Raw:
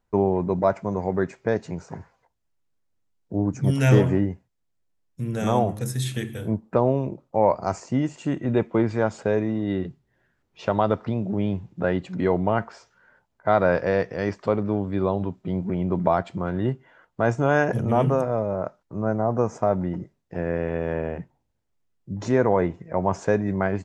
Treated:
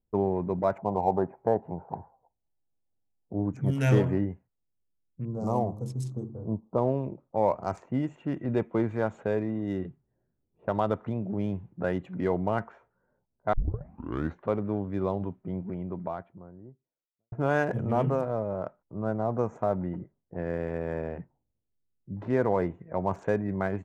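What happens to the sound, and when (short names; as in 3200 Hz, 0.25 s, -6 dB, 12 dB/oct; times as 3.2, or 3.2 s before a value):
0.78–3.33 synth low-pass 820 Hz, resonance Q 5.4
5.25–6.78 elliptic band-stop 1100–4900 Hz
13.53 tape start 0.94 s
15.38–17.32 fade out quadratic
whole clip: Wiener smoothing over 9 samples; low-pass opened by the level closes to 440 Hz, open at -21 dBFS; gain -5.5 dB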